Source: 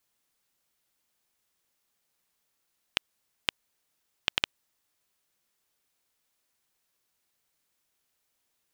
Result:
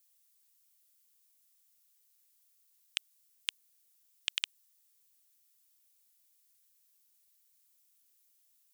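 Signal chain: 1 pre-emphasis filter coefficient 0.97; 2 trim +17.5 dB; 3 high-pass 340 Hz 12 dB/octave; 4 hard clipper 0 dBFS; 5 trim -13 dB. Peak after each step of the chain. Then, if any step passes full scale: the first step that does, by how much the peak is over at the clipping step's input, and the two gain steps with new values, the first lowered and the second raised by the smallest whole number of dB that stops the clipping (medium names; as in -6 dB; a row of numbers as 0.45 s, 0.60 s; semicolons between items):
-10.0 dBFS, +7.5 dBFS, +7.0 dBFS, 0.0 dBFS, -13.0 dBFS; step 2, 7.0 dB; step 2 +10.5 dB, step 5 -6 dB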